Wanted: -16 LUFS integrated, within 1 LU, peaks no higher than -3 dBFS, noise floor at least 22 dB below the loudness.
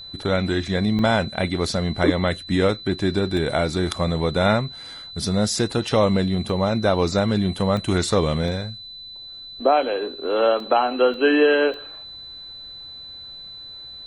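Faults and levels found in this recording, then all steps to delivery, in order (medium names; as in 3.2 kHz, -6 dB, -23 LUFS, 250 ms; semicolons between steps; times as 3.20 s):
dropouts 8; longest dropout 1.7 ms; steady tone 4 kHz; tone level -36 dBFS; loudness -21.5 LUFS; peak level -6.0 dBFS; loudness target -16.0 LUFS
-> interpolate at 0.99/3.37/6.49/7.77/8.48/10.60/11.14/11.74 s, 1.7 ms; band-stop 4 kHz, Q 30; trim +5.5 dB; peak limiter -3 dBFS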